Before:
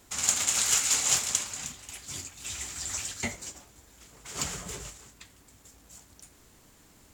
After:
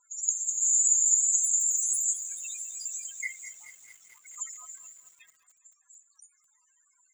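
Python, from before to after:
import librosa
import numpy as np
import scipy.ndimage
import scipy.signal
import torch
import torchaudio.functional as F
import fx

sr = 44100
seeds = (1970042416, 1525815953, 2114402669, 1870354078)

y = fx.crossing_spikes(x, sr, level_db=-15.0, at=(0.62, 2.13))
y = scipy.signal.sosfilt(scipy.signal.butter(2, 970.0, 'highpass', fs=sr, output='sos'), y)
y = fx.spec_topn(y, sr, count=8)
y = fx.echo_filtered(y, sr, ms=203, feedback_pct=62, hz=2800.0, wet_db=-17.0)
y = fx.echo_crushed(y, sr, ms=217, feedback_pct=80, bits=9, wet_db=-14)
y = y * librosa.db_to_amplitude(4.5)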